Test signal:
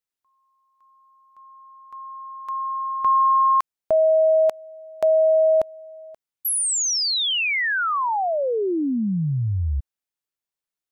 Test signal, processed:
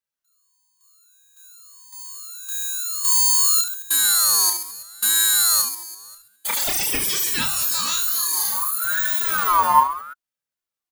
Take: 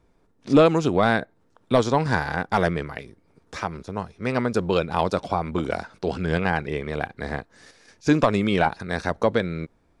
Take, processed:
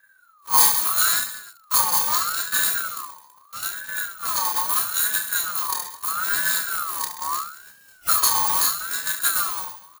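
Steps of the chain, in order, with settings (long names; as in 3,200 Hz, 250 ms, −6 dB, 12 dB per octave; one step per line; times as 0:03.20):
samples in bit-reversed order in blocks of 128 samples
parametric band 67 Hz +8.5 dB 2.8 octaves
comb filter 2.8 ms, depth 84%
on a send: reverse bouncing-ball delay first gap 30 ms, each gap 1.4×, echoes 5
on the sum: ring modulator whose carrier an LFO sweeps 1,300 Hz, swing 25%, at 0.77 Hz
level −1.5 dB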